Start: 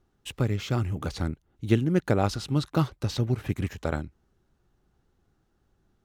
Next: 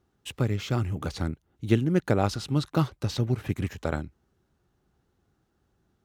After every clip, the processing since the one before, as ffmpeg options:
ffmpeg -i in.wav -af "highpass=54" out.wav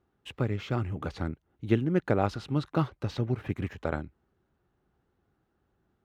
ffmpeg -i in.wav -af "bass=frequency=250:gain=-3,treble=frequency=4000:gain=-14,volume=-1dB" out.wav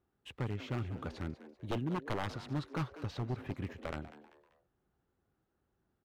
ffmpeg -i in.wav -filter_complex "[0:a]aeval=exprs='0.0841*(abs(mod(val(0)/0.0841+3,4)-2)-1)':channel_layout=same,asplit=4[link_01][link_02][link_03][link_04];[link_02]adelay=194,afreqshift=140,volume=-15dB[link_05];[link_03]adelay=388,afreqshift=280,volume=-23.4dB[link_06];[link_04]adelay=582,afreqshift=420,volume=-31.8dB[link_07];[link_01][link_05][link_06][link_07]amix=inputs=4:normalize=0,volume=-6.5dB" out.wav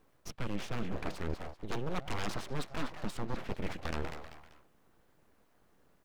ffmpeg -i in.wav -af "aeval=exprs='abs(val(0))':channel_layout=same,areverse,acompressor=threshold=-45dB:ratio=5,areverse,volume=14dB" out.wav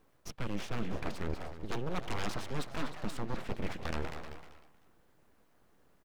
ffmpeg -i in.wav -af "aecho=1:1:308:0.224" out.wav

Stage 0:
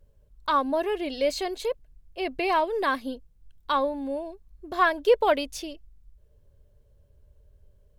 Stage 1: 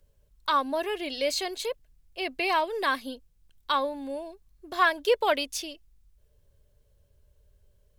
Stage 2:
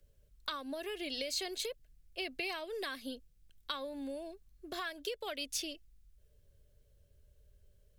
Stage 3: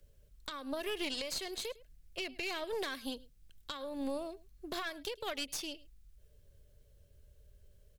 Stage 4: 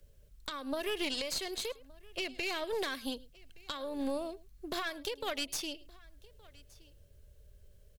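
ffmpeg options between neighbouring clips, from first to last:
ffmpeg -i in.wav -filter_complex "[0:a]tiltshelf=frequency=1400:gain=-5,acrossover=split=120|1100|2700[link_01][link_02][link_03][link_04];[link_01]alimiter=level_in=30dB:limit=-24dB:level=0:latency=1:release=67,volume=-30dB[link_05];[link_05][link_02][link_03][link_04]amix=inputs=4:normalize=0" out.wav
ffmpeg -i in.wav -filter_complex "[0:a]acompressor=threshold=-30dB:ratio=2.5,equalizer=frequency=940:width_type=o:width=0.48:gain=-10.5,acrossover=split=160|3000[link_01][link_02][link_03];[link_02]acompressor=threshold=-37dB:ratio=4[link_04];[link_01][link_04][link_03]amix=inputs=3:normalize=0,volume=-2dB" out.wav
ffmpeg -i in.wav -filter_complex "[0:a]asplit=2[link_01][link_02];[link_02]adelay=105,volume=-22dB,highshelf=frequency=4000:gain=-2.36[link_03];[link_01][link_03]amix=inputs=2:normalize=0,alimiter=level_in=8dB:limit=-24dB:level=0:latency=1:release=311,volume=-8dB,aeval=exprs='0.0251*(cos(1*acos(clip(val(0)/0.0251,-1,1)))-cos(1*PI/2))+0.00891*(cos(2*acos(clip(val(0)/0.0251,-1,1)))-cos(2*PI/2))':channel_layout=same,volume=3.5dB" out.wav
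ffmpeg -i in.wav -af "aecho=1:1:1169:0.0631,volume=2.5dB" out.wav

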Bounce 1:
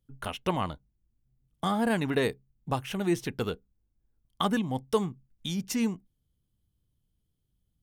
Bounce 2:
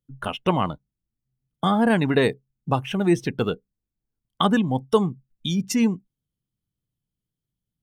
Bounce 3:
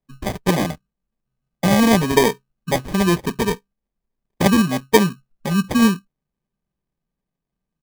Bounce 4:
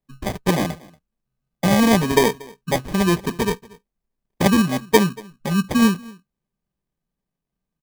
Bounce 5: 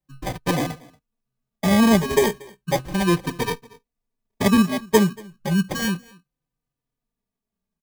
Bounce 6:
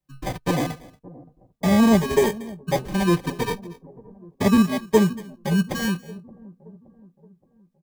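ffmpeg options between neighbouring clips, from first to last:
ffmpeg -i in.wav -af "afftdn=noise_reduction=13:noise_floor=-42,lowshelf=frequency=100:width_type=q:width=1.5:gain=-6,volume=7dB" out.wav
ffmpeg -i in.wav -af "aecho=1:1:4.8:0.99,acrusher=samples=32:mix=1:aa=0.000001" out.wav
ffmpeg -i in.wav -af "aecho=1:1:234:0.0668,volume=-1dB" out.wav
ffmpeg -i in.wav -filter_complex "[0:a]asplit=2[link_01][link_02];[link_02]adelay=3.4,afreqshift=-0.34[link_03];[link_01][link_03]amix=inputs=2:normalize=1,volume=1dB" out.wav
ffmpeg -i in.wav -filter_complex "[0:a]acrossover=split=810[link_01][link_02];[link_01]aecho=1:1:572|1144|1716|2288:0.112|0.0527|0.0248|0.0116[link_03];[link_02]asoftclip=type=tanh:threshold=-23dB[link_04];[link_03][link_04]amix=inputs=2:normalize=0" out.wav

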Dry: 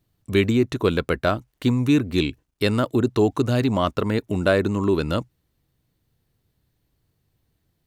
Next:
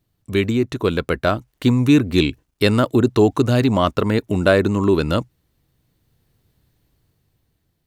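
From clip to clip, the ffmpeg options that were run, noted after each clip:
ffmpeg -i in.wav -af "dynaudnorm=framelen=300:gausssize=9:maxgain=10dB" out.wav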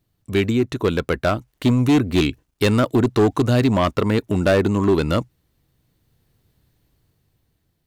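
ffmpeg -i in.wav -af "volume=11.5dB,asoftclip=hard,volume=-11.5dB" out.wav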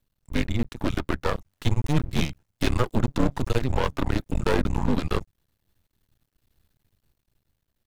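ffmpeg -i in.wav -af "afreqshift=-140,aeval=exprs='max(val(0),0)':channel_layout=same,volume=-2dB" out.wav

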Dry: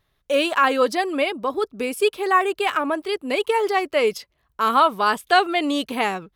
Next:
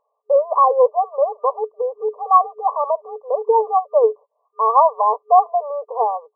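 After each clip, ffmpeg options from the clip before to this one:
ffmpeg -i in.wav -af "afftfilt=real='re*between(b*sr/4096,430,1200)':imag='im*between(b*sr/4096,430,1200)':win_size=4096:overlap=0.75,volume=6dB" out.wav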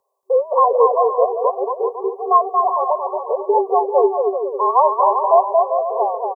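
ffmpeg -i in.wav -af "afreqshift=-42,bass=frequency=250:gain=-1,treble=frequency=4000:gain=14,aecho=1:1:230|391|503.7|582.6|637.8:0.631|0.398|0.251|0.158|0.1,volume=-1dB" out.wav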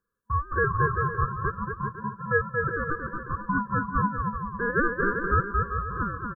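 ffmpeg -i in.wav -af "aeval=exprs='val(0)*sin(2*PI*600*n/s)':channel_layout=same,volume=-7.5dB" out.wav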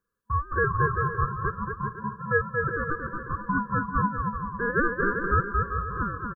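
ffmpeg -i in.wav -af "aecho=1:1:443|886|1329:0.0891|0.0419|0.0197" out.wav

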